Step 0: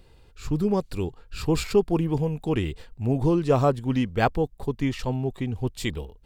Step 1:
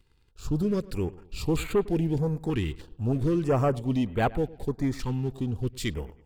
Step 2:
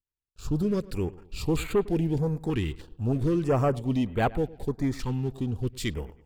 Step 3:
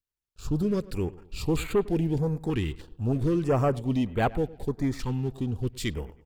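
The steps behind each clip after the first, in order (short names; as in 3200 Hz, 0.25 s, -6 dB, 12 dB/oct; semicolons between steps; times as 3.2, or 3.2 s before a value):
sample leveller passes 2; dark delay 0.106 s, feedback 45%, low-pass 3600 Hz, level -20 dB; stepped notch 3.2 Hz 610–5300 Hz; gain -8 dB
gate -54 dBFS, range -33 dB
speakerphone echo 90 ms, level -28 dB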